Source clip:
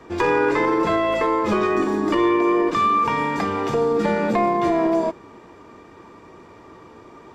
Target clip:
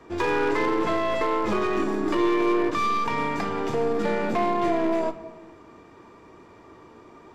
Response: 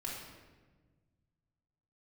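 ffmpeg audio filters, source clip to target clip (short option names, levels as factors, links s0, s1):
-filter_complex "[0:a]aeval=exprs='0.335*(cos(1*acos(clip(val(0)/0.335,-1,1)))-cos(1*PI/2))+0.0211*(cos(6*acos(clip(val(0)/0.335,-1,1)))-cos(6*PI/2))':c=same,volume=4.73,asoftclip=hard,volume=0.211,asplit=2[s0][s1];[1:a]atrim=start_sample=2205[s2];[s1][s2]afir=irnorm=-1:irlink=0,volume=0.316[s3];[s0][s3]amix=inputs=2:normalize=0,volume=0.501"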